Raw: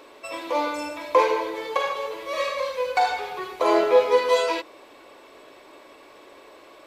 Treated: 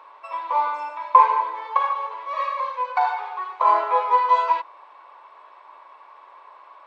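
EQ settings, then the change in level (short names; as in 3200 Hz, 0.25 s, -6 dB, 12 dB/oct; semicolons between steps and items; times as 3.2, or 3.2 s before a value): resonant high-pass 980 Hz, resonance Q 4.9; tape spacing loss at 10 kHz 28 dB; -1.0 dB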